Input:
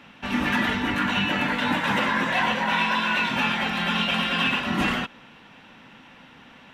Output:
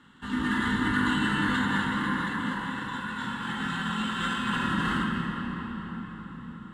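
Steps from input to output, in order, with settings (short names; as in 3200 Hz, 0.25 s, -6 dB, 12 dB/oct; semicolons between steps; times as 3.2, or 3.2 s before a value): Doppler pass-by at 2.92, 9 m/s, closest 3.8 m; bell 6300 Hz -4.5 dB 0.55 oct; in parallel at +1 dB: limiter -22.5 dBFS, peak gain reduction 9.5 dB; on the sum: negative-ratio compressor -31 dBFS, ratio -1; fixed phaser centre 2400 Hz, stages 6; sample-rate reducer 11000 Hz, jitter 0%; air absorption 100 m; reverb RT60 5.8 s, pre-delay 34 ms, DRR 0 dB; gain +2 dB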